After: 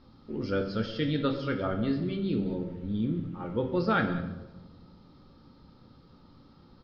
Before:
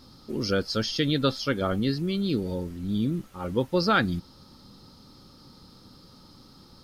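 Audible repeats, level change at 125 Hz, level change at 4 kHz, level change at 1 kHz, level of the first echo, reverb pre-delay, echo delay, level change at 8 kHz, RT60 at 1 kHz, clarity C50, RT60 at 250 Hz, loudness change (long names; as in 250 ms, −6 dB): 1, −3.0 dB, −11.0 dB, −4.0 dB, −18.5 dB, 14 ms, 193 ms, below −20 dB, 0.95 s, 8.0 dB, 1.4 s, −3.5 dB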